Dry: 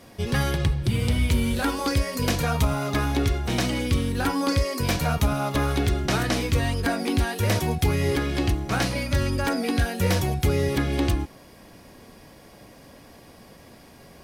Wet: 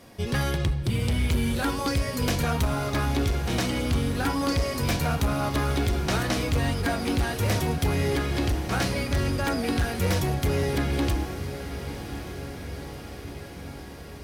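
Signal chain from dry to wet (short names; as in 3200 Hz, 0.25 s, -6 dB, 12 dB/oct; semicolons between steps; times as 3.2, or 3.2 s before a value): diffused feedback echo 1.059 s, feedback 68%, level -11.5 dB; hard clip -17.5 dBFS, distortion -17 dB; gain -1.5 dB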